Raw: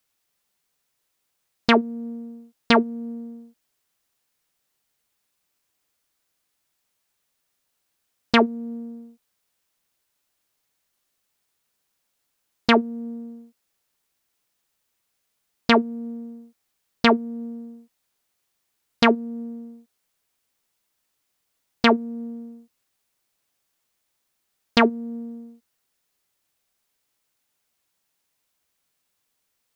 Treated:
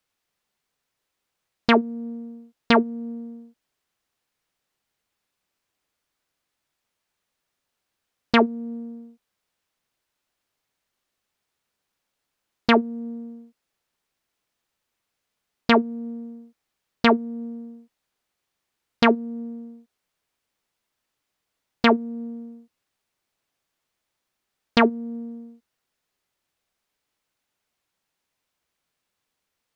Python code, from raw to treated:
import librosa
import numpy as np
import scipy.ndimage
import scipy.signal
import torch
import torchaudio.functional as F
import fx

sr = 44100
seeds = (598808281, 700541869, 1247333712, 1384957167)

y = fx.high_shelf(x, sr, hz=6200.0, db=-10.5)